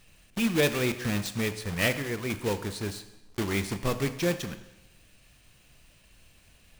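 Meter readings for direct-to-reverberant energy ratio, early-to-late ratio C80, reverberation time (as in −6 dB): 10.5 dB, 14.0 dB, 1.0 s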